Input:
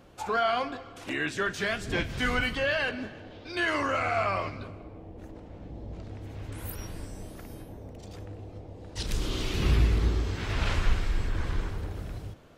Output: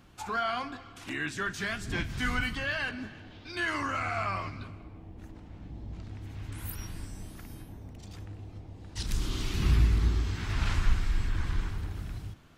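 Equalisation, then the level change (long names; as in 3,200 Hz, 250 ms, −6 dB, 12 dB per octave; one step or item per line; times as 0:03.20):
dynamic equaliser 2,900 Hz, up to −4 dB, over −44 dBFS, Q 0.99
parametric band 520 Hz −12.5 dB 0.97 octaves
0.0 dB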